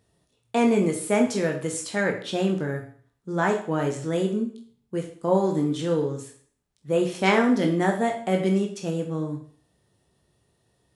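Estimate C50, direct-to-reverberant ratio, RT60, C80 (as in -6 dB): 8.5 dB, 2.0 dB, 0.50 s, 12.5 dB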